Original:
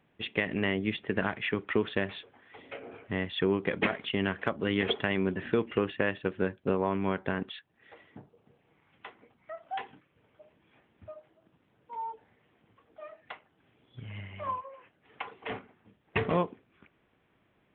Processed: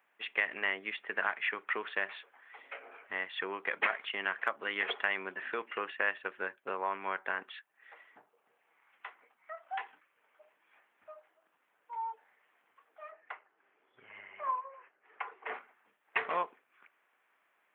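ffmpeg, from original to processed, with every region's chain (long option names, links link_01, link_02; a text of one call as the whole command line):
ffmpeg -i in.wav -filter_complex "[0:a]asettb=1/sr,asplit=3[link_01][link_02][link_03];[link_01]atrim=end=13.114[link_04];[link_02]atrim=start=13.11:end=15.54,asetpts=PTS-STARTPTS,afade=type=in:duration=0.004:curve=qsin,afade=type=out:start_time=2.426:duration=0.004:curve=qsin,lowpass=2300,equalizer=frequency=390:width_type=o:width=0.57:gain=8[link_05];[link_03]atrim=start=15.536[link_06];[link_04][link_05]acrossfade=duration=0.004:curve1=hsin:curve2=qsin[link_07];[link_07][link_06]acrossfade=duration=0.004:curve1=qsin:curve2=hsin,highpass=1200,equalizer=frequency=3700:width_type=o:width=1.1:gain=-13.5,volume=6dB" out.wav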